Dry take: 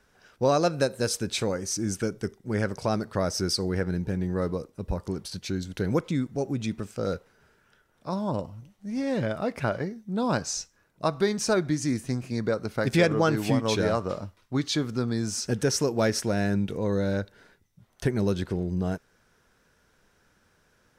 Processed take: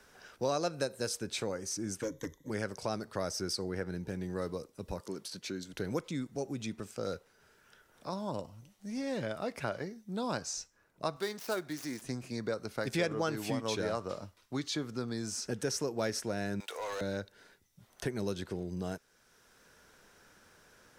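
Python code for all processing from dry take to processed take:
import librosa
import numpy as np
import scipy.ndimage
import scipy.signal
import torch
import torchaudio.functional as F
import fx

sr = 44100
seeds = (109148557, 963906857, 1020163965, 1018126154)

y = fx.chain(x, sr, fx.ripple_eq(per_octave=1.1, db=17),
    fx.clip_hard(threshold_db=-22.0), at=(2.02, 2.5))
y = fx.chain(y, sr, fx.highpass(hz=180.0, slope=12),
    fx.notch(hz=770.0, q=8.4), at=(5.0, 5.73))
y = fx.chain(y, sr, fx.dead_time(dead_ms=0.074),
    fx.highpass(hz=420.0, slope=6), at=(11.16, 12.02))
y = fx.chain(y, sr, fx.highpass(hz=690.0, slope=24),
    fx.leveller(passes=3), at=(16.6, 17.01))
y = fx.bass_treble(y, sr, bass_db=-5, treble_db=3)
y = fx.band_squash(y, sr, depth_pct=40)
y = y * librosa.db_to_amplitude(-7.5)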